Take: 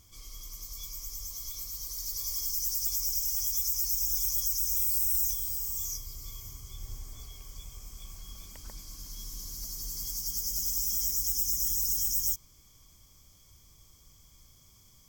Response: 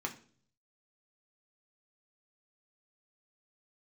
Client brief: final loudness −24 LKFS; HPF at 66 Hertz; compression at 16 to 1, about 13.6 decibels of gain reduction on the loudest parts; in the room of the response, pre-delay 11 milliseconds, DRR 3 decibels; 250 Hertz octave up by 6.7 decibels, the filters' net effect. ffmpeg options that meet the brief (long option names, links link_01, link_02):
-filter_complex "[0:a]highpass=66,equalizer=frequency=250:width_type=o:gain=9,acompressor=threshold=-38dB:ratio=16,asplit=2[link_01][link_02];[1:a]atrim=start_sample=2205,adelay=11[link_03];[link_02][link_03]afir=irnorm=-1:irlink=0,volume=-5.5dB[link_04];[link_01][link_04]amix=inputs=2:normalize=0,volume=15.5dB"